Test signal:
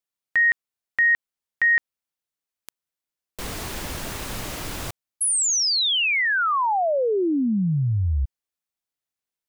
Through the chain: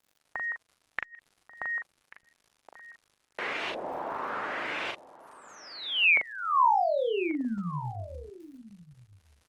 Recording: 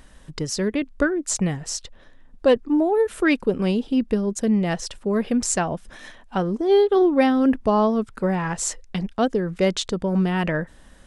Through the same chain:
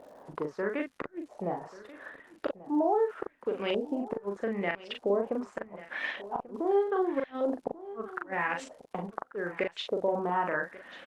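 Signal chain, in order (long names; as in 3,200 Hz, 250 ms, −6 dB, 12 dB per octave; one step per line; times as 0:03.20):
high-pass filter 410 Hz 12 dB per octave
downward compressor 2.5 to 1, threshold −42 dBFS
auto-filter low-pass saw up 0.81 Hz 590–2,900 Hz
surface crackle 110 per second −55 dBFS
gate with flip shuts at −24 dBFS, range −39 dB
double-tracking delay 40 ms −4 dB
single-tap delay 1,138 ms −17 dB
level +6 dB
Opus 20 kbit/s 48,000 Hz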